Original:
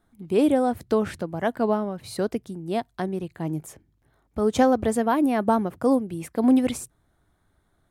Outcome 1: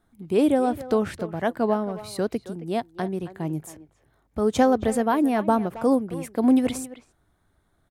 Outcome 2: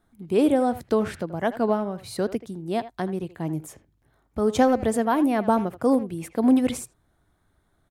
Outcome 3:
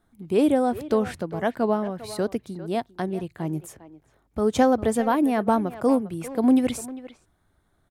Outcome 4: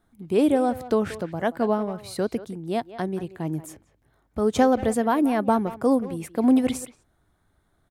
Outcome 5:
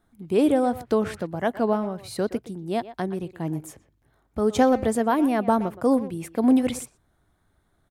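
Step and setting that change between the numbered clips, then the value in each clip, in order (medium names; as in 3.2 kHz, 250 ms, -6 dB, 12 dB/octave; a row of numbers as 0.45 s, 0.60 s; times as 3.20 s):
speakerphone echo, time: 270 ms, 80 ms, 400 ms, 180 ms, 120 ms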